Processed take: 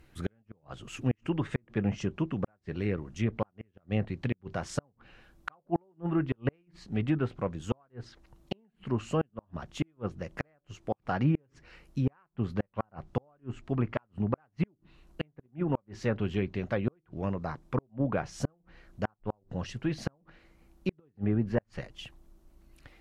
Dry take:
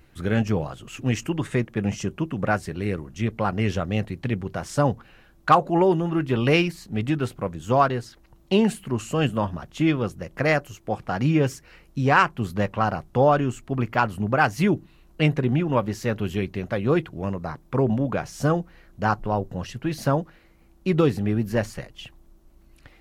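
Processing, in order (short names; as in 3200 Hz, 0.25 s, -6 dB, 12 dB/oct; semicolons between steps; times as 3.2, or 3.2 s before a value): treble ducked by the level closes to 1700 Hz, closed at -19 dBFS; flipped gate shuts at -13 dBFS, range -41 dB; gain -4 dB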